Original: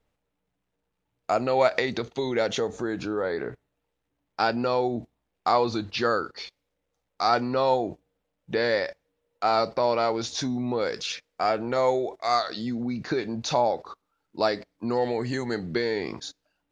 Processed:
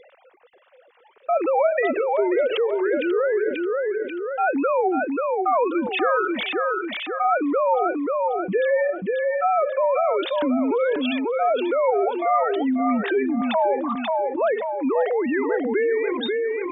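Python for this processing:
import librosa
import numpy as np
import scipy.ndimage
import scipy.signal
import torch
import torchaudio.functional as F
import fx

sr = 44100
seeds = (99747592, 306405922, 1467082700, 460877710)

y = fx.sine_speech(x, sr)
y = fx.echo_feedback(y, sr, ms=537, feedback_pct=19, wet_db=-9.5)
y = fx.env_flatten(y, sr, amount_pct=70)
y = y * 10.0 ** (-3.5 / 20.0)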